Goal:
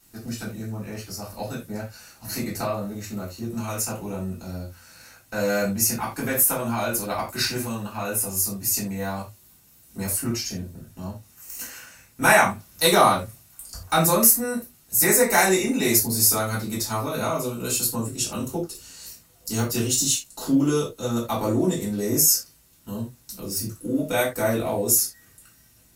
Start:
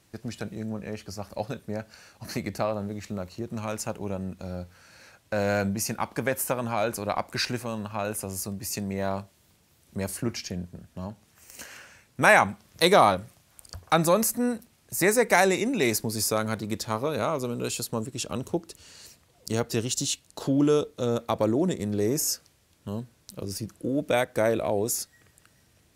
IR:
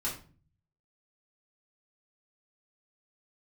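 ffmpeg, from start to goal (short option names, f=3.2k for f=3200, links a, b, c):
-filter_complex "[0:a]aemphasis=mode=production:type=50fm[a];[1:a]atrim=start_sample=2205,atrim=end_sample=4410[b];[a][b]afir=irnorm=-1:irlink=0,volume=-2.5dB"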